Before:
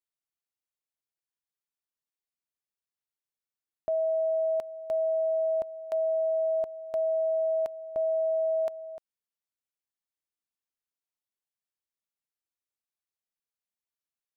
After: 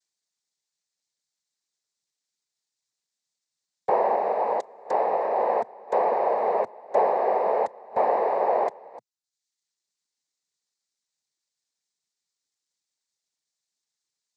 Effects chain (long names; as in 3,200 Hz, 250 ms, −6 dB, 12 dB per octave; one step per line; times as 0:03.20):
reverb reduction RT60 0.83 s
0:04.15–0:05.35: spectral tilt +2.5 dB per octave
cochlear-implant simulation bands 6
level +7 dB